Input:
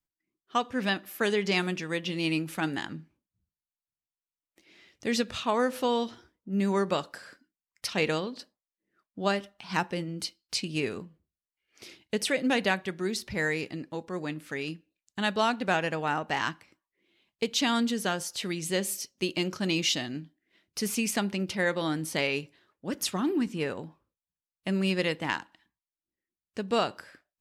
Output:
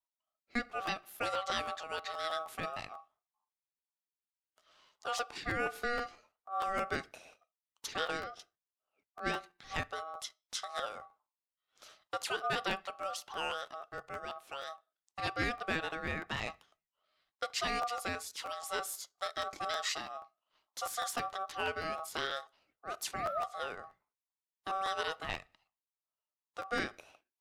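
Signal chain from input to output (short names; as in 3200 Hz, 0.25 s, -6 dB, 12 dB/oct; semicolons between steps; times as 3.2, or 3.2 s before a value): ring modulator 960 Hz; crackling interface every 0.16 s, samples 512, repeat, from 0.37; gain -5.5 dB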